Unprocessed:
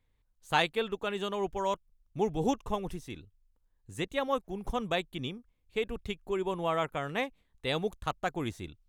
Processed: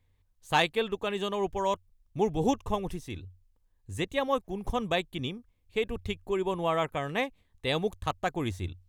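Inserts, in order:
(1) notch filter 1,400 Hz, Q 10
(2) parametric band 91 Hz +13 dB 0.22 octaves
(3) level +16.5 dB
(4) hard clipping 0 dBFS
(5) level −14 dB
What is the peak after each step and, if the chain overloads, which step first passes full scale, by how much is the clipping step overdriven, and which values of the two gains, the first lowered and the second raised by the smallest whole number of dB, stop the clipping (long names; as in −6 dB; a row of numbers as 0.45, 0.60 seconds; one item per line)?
−12.5, −12.5, +4.0, 0.0, −14.0 dBFS
step 3, 4.0 dB
step 3 +12.5 dB, step 5 −10 dB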